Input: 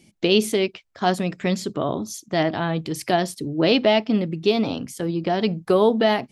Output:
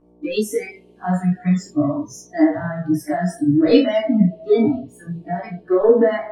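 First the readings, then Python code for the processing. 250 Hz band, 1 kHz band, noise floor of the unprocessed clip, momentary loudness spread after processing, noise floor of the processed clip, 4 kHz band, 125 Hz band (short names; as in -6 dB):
+5.0 dB, -3.0 dB, -58 dBFS, 13 LU, -50 dBFS, -8.5 dB, +4.5 dB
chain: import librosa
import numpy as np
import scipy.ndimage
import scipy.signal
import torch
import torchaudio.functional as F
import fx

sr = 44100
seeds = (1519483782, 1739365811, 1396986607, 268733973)

p1 = fx.dmg_buzz(x, sr, base_hz=60.0, harmonics=19, level_db=-35.0, tilt_db=-1, odd_only=False)
p2 = p1 + fx.room_early_taps(p1, sr, ms=(17, 29), db=(-10.0, -17.0), dry=0)
p3 = fx.leveller(p2, sr, passes=1)
p4 = fx.low_shelf_res(p3, sr, hz=550.0, db=9.0, q=1.5)
p5 = fx.rev_double_slope(p4, sr, seeds[0], early_s=0.54, late_s=4.4, knee_db=-19, drr_db=-4.5)
p6 = fx.noise_reduce_blind(p5, sr, reduce_db=27)
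y = p6 * 10.0 ** (-10.5 / 20.0)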